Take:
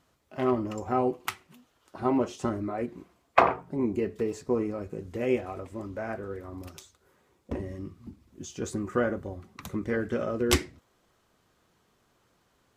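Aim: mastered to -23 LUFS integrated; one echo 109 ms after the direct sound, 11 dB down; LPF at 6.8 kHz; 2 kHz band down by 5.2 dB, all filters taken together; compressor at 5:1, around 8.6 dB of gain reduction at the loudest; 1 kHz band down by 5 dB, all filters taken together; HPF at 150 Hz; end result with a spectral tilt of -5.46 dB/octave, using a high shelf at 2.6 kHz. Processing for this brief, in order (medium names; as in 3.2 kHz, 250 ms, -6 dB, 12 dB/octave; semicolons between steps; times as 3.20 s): high-pass 150 Hz; low-pass 6.8 kHz; peaking EQ 1 kHz -5.5 dB; peaking EQ 2 kHz -3.5 dB; treble shelf 2.6 kHz -3 dB; compression 5:1, threshold -29 dBFS; delay 109 ms -11 dB; trim +13.5 dB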